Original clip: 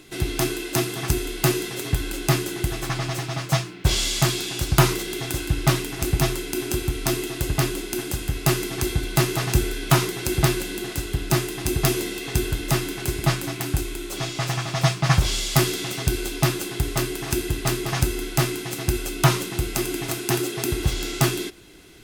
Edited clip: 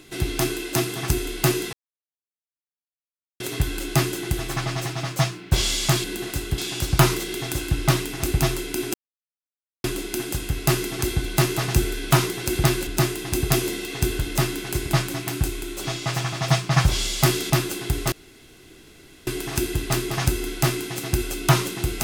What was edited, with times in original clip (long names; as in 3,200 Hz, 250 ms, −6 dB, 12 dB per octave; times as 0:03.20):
0:01.73: splice in silence 1.67 s
0:06.73–0:07.63: silence
0:10.66–0:11.20: move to 0:04.37
0:15.83–0:16.40: remove
0:17.02: splice in room tone 1.15 s